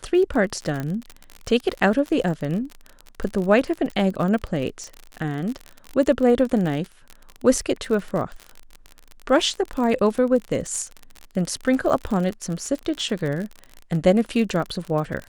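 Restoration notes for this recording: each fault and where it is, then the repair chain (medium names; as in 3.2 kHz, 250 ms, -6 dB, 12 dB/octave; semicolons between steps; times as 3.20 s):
crackle 44 per s -27 dBFS
0.80 s: pop -16 dBFS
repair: de-click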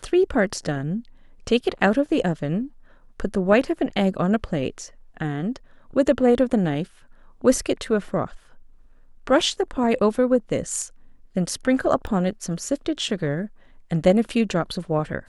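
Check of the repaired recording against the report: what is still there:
nothing left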